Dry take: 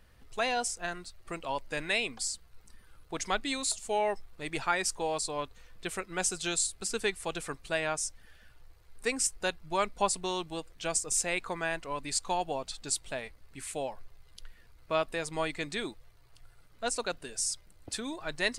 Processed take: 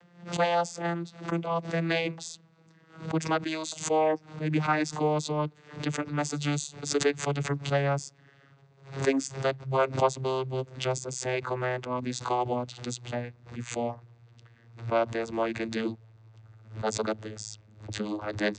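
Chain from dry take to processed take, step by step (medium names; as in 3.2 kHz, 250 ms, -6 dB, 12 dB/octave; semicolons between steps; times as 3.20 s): vocoder on a note that slides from F3, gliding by -9 st; swell ahead of each attack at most 130 dB/s; trim +5 dB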